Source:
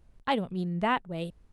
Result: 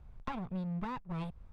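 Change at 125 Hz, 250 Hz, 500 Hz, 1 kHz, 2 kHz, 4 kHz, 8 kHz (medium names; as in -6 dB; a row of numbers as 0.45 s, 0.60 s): -4.0 dB, -6.5 dB, -15.0 dB, -12.0 dB, -15.5 dB, -17.5 dB, no reading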